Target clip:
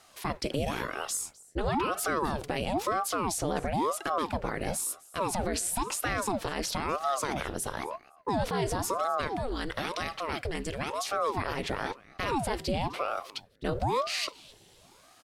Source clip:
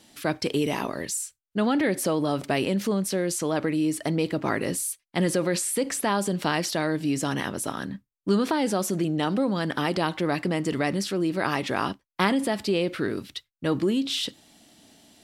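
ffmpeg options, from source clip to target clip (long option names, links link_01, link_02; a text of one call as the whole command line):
ffmpeg -i in.wav -filter_complex "[0:a]asettb=1/sr,asplit=3[link_01][link_02][link_03];[link_01]atrim=end=9.274[link_04];[link_02]atrim=start=9.27:end=11.1,asetpts=PTS-STARTPTS,afade=type=in:duration=0.004:curve=qsin,afade=type=out:start_time=1.826:duration=0.004:curve=qsin,equalizer=frequency=490:width=0.77:gain=-10[link_05];[link_03]atrim=start=11.096[link_06];[link_04][link_05]acrossfade=duration=0.004:curve1=hsin:curve2=qsin[link_07];[link_07][link_06]acrossfade=duration=0.004:curve1=qsin:curve2=hsin,alimiter=limit=-18.5dB:level=0:latency=1:release=61,aecho=1:1:256|512:0.0794|0.0127,aeval=exprs='val(0)*sin(2*PI*550*n/s+550*0.8/0.99*sin(2*PI*0.99*n/s))':channel_layout=same" out.wav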